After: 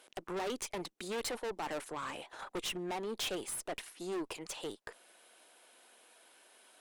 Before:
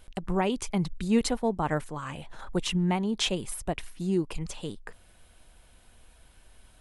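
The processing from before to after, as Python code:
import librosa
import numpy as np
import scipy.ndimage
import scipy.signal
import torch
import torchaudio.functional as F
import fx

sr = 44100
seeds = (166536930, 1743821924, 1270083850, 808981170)

y = np.minimum(x, 2.0 * 10.0 ** (-23.5 / 20.0) - x)
y = scipy.signal.sosfilt(scipy.signal.butter(4, 330.0, 'highpass', fs=sr, output='sos'), y)
y = fx.tube_stage(y, sr, drive_db=36.0, bias=0.45)
y = y * 10.0 ** (2.0 / 20.0)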